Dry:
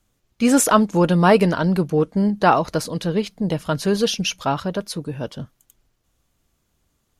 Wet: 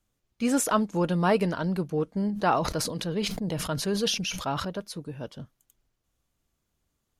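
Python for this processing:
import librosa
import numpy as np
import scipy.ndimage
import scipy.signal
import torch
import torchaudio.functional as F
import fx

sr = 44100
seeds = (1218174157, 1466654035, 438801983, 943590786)

y = fx.sustainer(x, sr, db_per_s=47.0, at=(2.3, 4.65))
y = y * librosa.db_to_amplitude(-9.0)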